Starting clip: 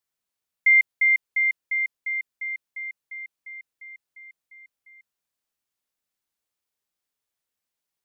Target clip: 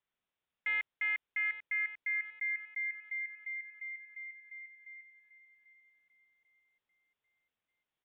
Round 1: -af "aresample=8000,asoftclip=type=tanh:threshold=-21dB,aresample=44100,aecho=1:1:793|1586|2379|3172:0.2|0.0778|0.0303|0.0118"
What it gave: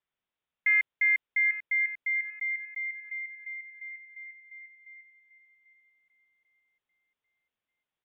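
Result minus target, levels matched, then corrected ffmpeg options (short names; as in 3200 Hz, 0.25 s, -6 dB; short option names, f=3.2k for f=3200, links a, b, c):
soft clip: distortion -6 dB
-af "aresample=8000,asoftclip=type=tanh:threshold=-31.5dB,aresample=44100,aecho=1:1:793|1586|2379|3172:0.2|0.0778|0.0303|0.0118"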